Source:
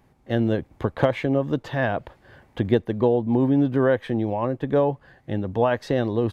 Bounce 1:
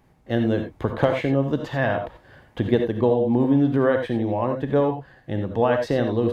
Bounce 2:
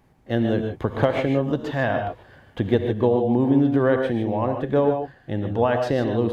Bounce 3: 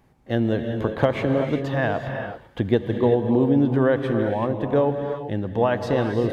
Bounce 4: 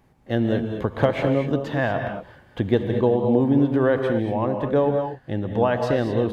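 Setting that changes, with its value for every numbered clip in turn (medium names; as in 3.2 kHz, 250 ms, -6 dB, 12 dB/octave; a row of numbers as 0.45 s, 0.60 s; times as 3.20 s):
gated-style reverb, gate: 110 ms, 170 ms, 410 ms, 260 ms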